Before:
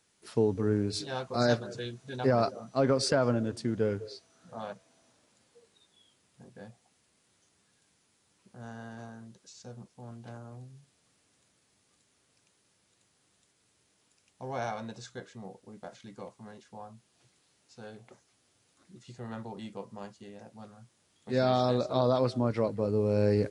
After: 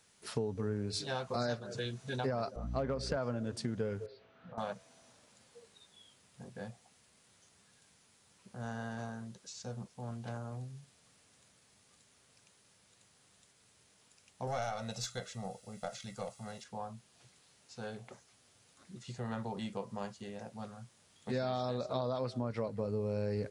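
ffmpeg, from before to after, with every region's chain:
ffmpeg -i in.wav -filter_complex "[0:a]asettb=1/sr,asplit=3[link_01][link_02][link_03];[link_01]atrim=end=2.564[link_04];[link_02]atrim=start=2.56:end=3.17,asetpts=PTS-STARTPTS,afade=type=in:duration=0.004:curve=qsin,afade=type=out:start_time=0.606:duration=0.004:curve=qsin,lowpass=frequency=2500:poles=1,asoftclip=type=hard:threshold=-16.5dB,aeval=exprs='val(0)+0.0126*(sin(2*PI*60*n/s)+sin(2*PI*2*60*n/s)/2+sin(2*PI*3*60*n/s)/3+sin(2*PI*4*60*n/s)/4+sin(2*PI*5*60*n/s)/5)':channel_layout=same[link_05];[link_03]atrim=start=3.166[link_06];[link_04][link_05]acrossfade=duration=0.004:curve1=hsin:curve2=qsin[link_07];[link_07][link_06]acrossfade=duration=0.004:curve1=qsin:curve2=hsin,asettb=1/sr,asplit=3[link_08][link_09][link_10];[link_08]atrim=end=4.064[link_11];[link_09]atrim=start=4.06:end=4.58,asetpts=PTS-STARTPTS,afade=type=in:duration=0.004:curve=qsin,afade=type=out:start_time=0.516:duration=0.004:curve=qsin,bandreject=frequency=53.86:width_type=h:width=4,bandreject=frequency=107.72:width_type=h:width=4,bandreject=frequency=161.58:width_type=h:width=4,bandreject=frequency=215.44:width_type=h:width=4,bandreject=frequency=269.3:width_type=h:width=4,bandreject=frequency=323.16:width_type=h:width=4,bandreject=frequency=377.02:width_type=h:width=4,bandreject=frequency=430.88:width_type=h:width=4,bandreject=frequency=484.74:width_type=h:width=4,bandreject=frequency=538.6:width_type=h:width=4,bandreject=frequency=592.46:width_type=h:width=4,bandreject=frequency=646.32:width_type=h:width=4,bandreject=frequency=700.18:width_type=h:width=4,bandreject=frequency=754.04:width_type=h:width=4,bandreject=frequency=807.9:width_type=h:width=4,bandreject=frequency=861.76:width_type=h:width=4,bandreject=frequency=915.62:width_type=h:width=4,bandreject=frequency=969.48:width_type=h:width=4,bandreject=frequency=1023.34:width_type=h:width=4,bandreject=frequency=1077.2:width_type=h:width=4,bandreject=frequency=1131.06:width_type=h:width=4,bandreject=frequency=1184.92:width_type=h:width=4,bandreject=frequency=1238.78:width_type=h:width=4,bandreject=frequency=1292.64:width_type=h:width=4,bandreject=frequency=1346.5:width_type=h:width=4,bandreject=frequency=1400.36:width_type=h:width=4,bandreject=frequency=1454.22:width_type=h:width=4,bandreject=frequency=1508.08:width_type=h:width=4,bandreject=frequency=1561.94:width_type=h:width=4,bandreject=frequency=1615.8:width_type=h:width=4,bandreject=frequency=1669.66:width_type=h:width=4,acompressor=threshold=-49dB:ratio=5:attack=3.2:release=140:knee=1:detection=peak,lowpass=frequency=3100:width=0.5412,lowpass=frequency=3100:width=1.3066[link_12];[link_10]atrim=start=4.576[link_13];[link_11][link_12]acrossfade=duration=0.004:curve1=hsin:curve2=qsin[link_14];[link_14][link_13]acrossfade=duration=0.004:curve1=qsin:curve2=hsin,asettb=1/sr,asplit=3[link_15][link_16][link_17];[link_15]atrim=end=14.474[link_18];[link_16]atrim=start=14.47:end=16.64,asetpts=PTS-STARTPTS,afade=type=in:duration=0.004:curve=qsin,afade=type=out:start_time=2.166:duration=0.004:curve=qsin,highshelf=frequency=3200:gain=8.5,aecho=1:1:1.5:0.67,atrim=end_sample=95697,aeval=exprs='(tanh(14.1*val(0)+0.5)-tanh(0.5))/14.1':channel_layout=same[link_19];[link_17]atrim=start=16.636[link_20];[link_18][link_19]acrossfade=duration=0.004:curve1=hsin:curve2=qsin[link_21];[link_21][link_20]acrossfade=duration=0.004:curve1=qsin:curve2=hsin,equalizer=frequency=320:width_type=o:width=0.45:gain=-7,acompressor=threshold=-38dB:ratio=4,volume=4dB" out.wav

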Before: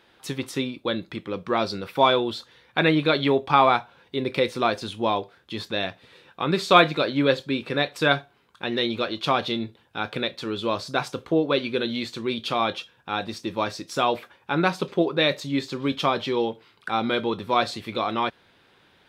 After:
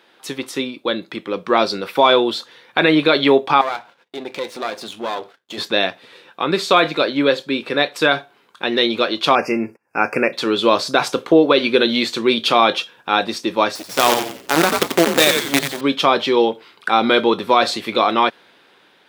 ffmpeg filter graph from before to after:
ffmpeg -i in.wav -filter_complex "[0:a]asettb=1/sr,asplit=3[link_01][link_02][link_03];[link_01]atrim=end=3.614[link_04];[link_02]atrim=start=3.61:end=5.58,asetpts=PTS-STARTPTS,afade=type=in:duration=0.004:curve=qsin,afade=type=out:start_time=1.966:duration=0.004:curve=qsin,aeval=exprs='if(lt(val(0),0),0.251*val(0),val(0))':channel_layout=same,agate=range=-22dB:threshold=-57dB:ratio=16:release=100:detection=peak,acompressor=threshold=-43dB:ratio=1.5:attack=3.2:release=140:knee=1:detection=peak[link_05];[link_03]atrim=start=5.576[link_06];[link_04][link_05]acrossfade=duration=0.004:curve1=hsin:curve2=qsin[link_07];[link_07][link_06]acrossfade=duration=0.004:curve1=qsin:curve2=hsin,asettb=1/sr,asplit=3[link_08][link_09][link_10];[link_08]atrim=end=9.354[link_11];[link_09]atrim=start=9.35:end=10.33,asetpts=PTS-STARTPTS,afade=type=in:duration=0.004:curve=qsin,afade=type=out:start_time=0.976:duration=0.004:curve=qsin,agate=range=-35dB:threshold=-53dB:ratio=16:release=100:detection=peak,acompressor=mode=upward:threshold=-42dB:ratio=2.5:attack=3.2:release=140:knee=2.83:detection=peak,asuperstop=centerf=3600:order=20:qfactor=1.8[link_12];[link_10]atrim=start=10.326[link_13];[link_11][link_12]acrossfade=duration=0.004:curve1=hsin:curve2=qsin[link_14];[link_14][link_13]acrossfade=duration=0.004:curve1=qsin:curve2=hsin,asettb=1/sr,asplit=3[link_15][link_16][link_17];[link_15]atrim=end=13.754[link_18];[link_16]atrim=start=13.75:end=15.81,asetpts=PTS-STARTPTS,afade=type=in:duration=0.004:curve=qsin,afade=type=out:start_time=2.056:duration=0.004:curve=qsin,acrusher=bits=4:dc=4:mix=0:aa=0.000001,asplit=6[link_19][link_20][link_21][link_22][link_23][link_24];[link_20]adelay=88,afreqshift=-130,volume=-6.5dB[link_25];[link_21]adelay=176,afreqshift=-260,volume=-14.7dB[link_26];[link_22]adelay=264,afreqshift=-390,volume=-22.9dB[link_27];[link_23]adelay=352,afreqshift=-520,volume=-31dB[link_28];[link_24]adelay=440,afreqshift=-650,volume=-39.2dB[link_29];[link_19][link_25][link_26][link_27][link_28][link_29]amix=inputs=6:normalize=0,atrim=end_sample=90846[link_30];[link_17]atrim=start=15.806[link_31];[link_18][link_30]acrossfade=duration=0.004:curve1=hsin:curve2=qsin[link_32];[link_32][link_31]acrossfade=duration=0.004:curve1=qsin:curve2=hsin,highpass=250,dynaudnorm=framelen=490:gausssize=5:maxgain=11.5dB,alimiter=level_in=6dB:limit=-1dB:release=50:level=0:latency=1,volume=-1dB" out.wav

